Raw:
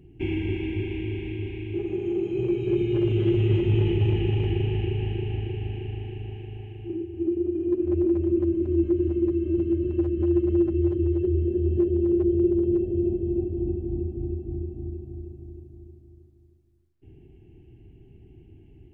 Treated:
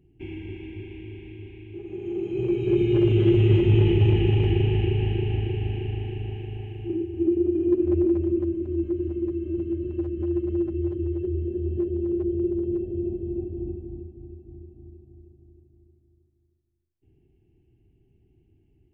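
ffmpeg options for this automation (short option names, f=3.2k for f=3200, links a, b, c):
-af "volume=3.5dB,afade=t=in:st=1.82:d=1.09:silence=0.237137,afade=t=out:st=7.67:d=0.94:silence=0.421697,afade=t=out:st=13.6:d=0.53:silence=0.398107"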